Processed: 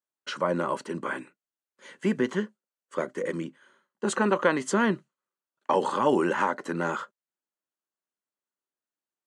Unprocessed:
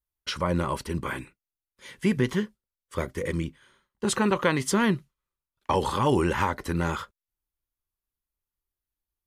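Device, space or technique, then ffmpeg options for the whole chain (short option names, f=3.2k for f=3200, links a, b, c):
television speaker: -af "highpass=f=200:w=0.5412,highpass=f=200:w=1.3066,equalizer=f=600:t=q:w=4:g=4,equalizer=f=1.5k:t=q:w=4:g=3,equalizer=f=2.3k:t=q:w=4:g=-6,equalizer=f=3.6k:t=q:w=4:g=-7,equalizer=f=5.2k:t=q:w=4:g=-9,lowpass=f=8k:w=0.5412,lowpass=f=8k:w=1.3066"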